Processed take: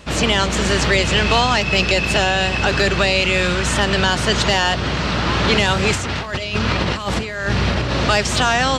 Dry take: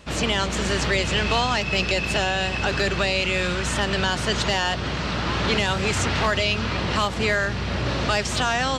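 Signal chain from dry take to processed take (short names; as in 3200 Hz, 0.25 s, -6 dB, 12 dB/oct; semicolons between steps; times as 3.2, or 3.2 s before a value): 5.92–7.96 negative-ratio compressor -26 dBFS, ratio -0.5; gain +6 dB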